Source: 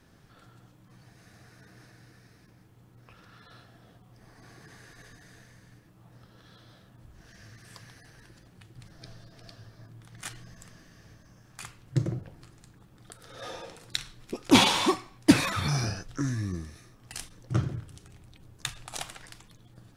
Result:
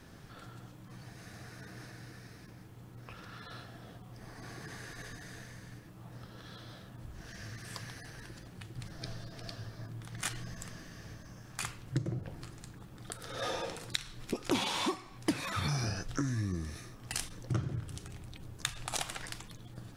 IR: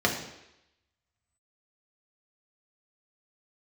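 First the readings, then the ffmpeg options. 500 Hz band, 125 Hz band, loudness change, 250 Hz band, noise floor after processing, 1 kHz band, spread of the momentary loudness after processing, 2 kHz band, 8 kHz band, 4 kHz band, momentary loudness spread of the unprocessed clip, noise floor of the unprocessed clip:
-5.5 dB, -4.0 dB, -11.5 dB, -10.0 dB, -52 dBFS, -7.5 dB, 16 LU, -6.0 dB, -3.5 dB, -7.5 dB, 21 LU, -58 dBFS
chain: -af "acompressor=threshold=0.0158:ratio=6,volume=1.88"

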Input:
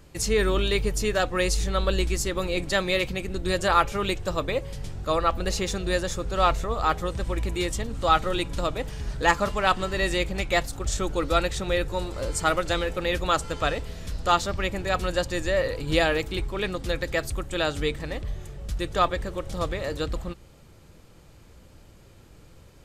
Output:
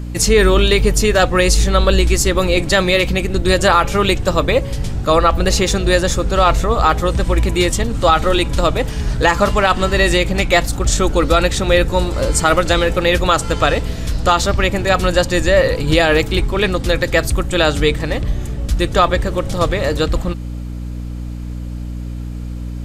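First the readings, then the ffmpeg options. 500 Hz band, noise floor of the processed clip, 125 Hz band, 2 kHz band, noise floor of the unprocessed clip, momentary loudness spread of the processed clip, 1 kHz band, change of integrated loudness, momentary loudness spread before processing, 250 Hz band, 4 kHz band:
+11.0 dB, -26 dBFS, +13.0 dB, +10.5 dB, -51 dBFS, 11 LU, +9.0 dB, +11.0 dB, 8 LU, +12.0 dB, +10.5 dB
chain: -af "aeval=exprs='val(0)+0.0158*(sin(2*PI*60*n/s)+sin(2*PI*2*60*n/s)/2+sin(2*PI*3*60*n/s)/3+sin(2*PI*4*60*n/s)/4+sin(2*PI*5*60*n/s)/5)':c=same,alimiter=level_in=4.47:limit=0.891:release=50:level=0:latency=1,volume=0.891"

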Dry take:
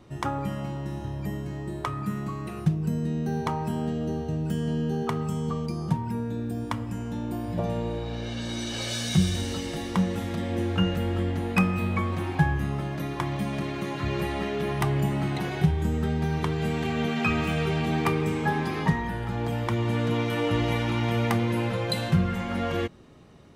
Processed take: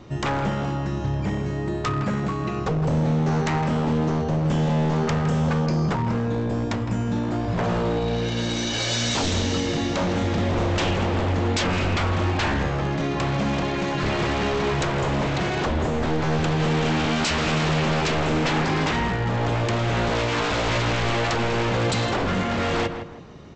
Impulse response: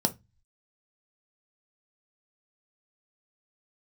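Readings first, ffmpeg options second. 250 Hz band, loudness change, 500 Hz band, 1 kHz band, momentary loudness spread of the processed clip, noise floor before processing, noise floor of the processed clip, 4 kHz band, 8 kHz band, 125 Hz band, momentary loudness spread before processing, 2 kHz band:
+3.0 dB, +4.5 dB, +6.0 dB, +6.0 dB, 4 LU, -35 dBFS, -27 dBFS, +7.5 dB, +7.5 dB, +3.5 dB, 7 LU, +6.5 dB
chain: -filter_complex "[0:a]aresample=16000,aeval=exprs='0.0473*(abs(mod(val(0)/0.0473+3,4)-2)-1)':c=same,aresample=44100,asplit=2[s0][s1];[s1]adelay=161,lowpass=f=1900:p=1,volume=0.398,asplit=2[s2][s3];[s3]adelay=161,lowpass=f=1900:p=1,volume=0.35,asplit=2[s4][s5];[s5]adelay=161,lowpass=f=1900:p=1,volume=0.35,asplit=2[s6][s7];[s7]adelay=161,lowpass=f=1900:p=1,volume=0.35[s8];[s0][s2][s4][s6][s8]amix=inputs=5:normalize=0,volume=2.51"

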